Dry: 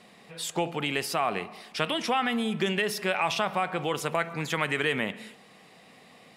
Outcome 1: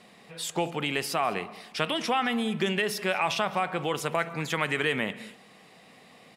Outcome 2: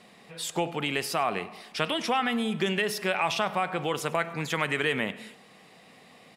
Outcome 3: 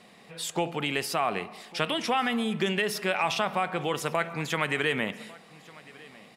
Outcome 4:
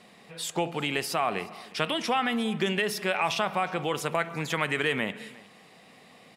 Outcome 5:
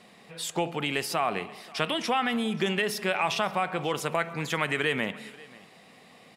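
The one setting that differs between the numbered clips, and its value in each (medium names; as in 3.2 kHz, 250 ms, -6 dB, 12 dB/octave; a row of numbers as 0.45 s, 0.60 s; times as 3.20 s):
delay, time: 206 ms, 99 ms, 1151 ms, 358 ms, 535 ms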